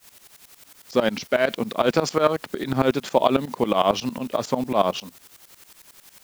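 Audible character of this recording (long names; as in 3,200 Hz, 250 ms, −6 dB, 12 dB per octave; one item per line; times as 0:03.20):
a quantiser's noise floor 8 bits, dither triangular
tremolo saw up 11 Hz, depth 90%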